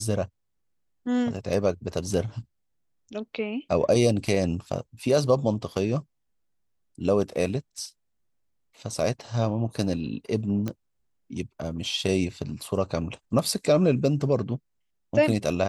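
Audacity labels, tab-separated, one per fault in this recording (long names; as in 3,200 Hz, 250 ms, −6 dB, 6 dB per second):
10.680000	10.680000	click −17 dBFS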